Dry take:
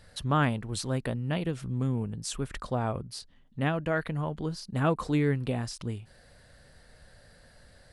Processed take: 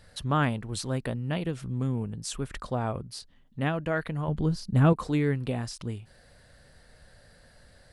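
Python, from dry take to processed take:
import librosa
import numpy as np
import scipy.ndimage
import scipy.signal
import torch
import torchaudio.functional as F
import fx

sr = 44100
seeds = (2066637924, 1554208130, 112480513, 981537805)

y = fx.low_shelf(x, sr, hz=250.0, db=11.5, at=(4.28, 4.93))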